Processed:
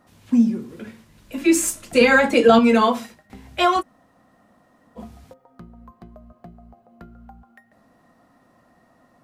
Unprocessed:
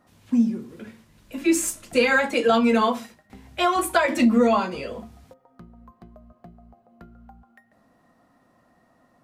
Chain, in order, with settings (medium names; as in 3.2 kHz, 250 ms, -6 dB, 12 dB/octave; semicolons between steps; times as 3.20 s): 2.01–2.59 s: bass shelf 450 Hz +6.5 dB; 3.80–4.98 s: room tone, crossfade 0.06 s; trim +3.5 dB